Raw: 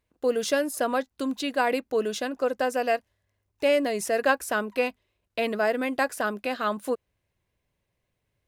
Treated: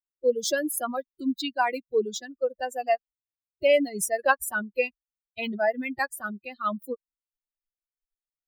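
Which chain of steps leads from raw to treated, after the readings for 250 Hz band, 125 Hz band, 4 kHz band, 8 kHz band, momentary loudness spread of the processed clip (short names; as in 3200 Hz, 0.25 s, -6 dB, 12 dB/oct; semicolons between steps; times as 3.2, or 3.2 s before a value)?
-2.0 dB, n/a, -1.0 dB, +3.0 dB, 11 LU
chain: per-bin expansion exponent 3; high shelf 10000 Hz +11 dB; gain +5 dB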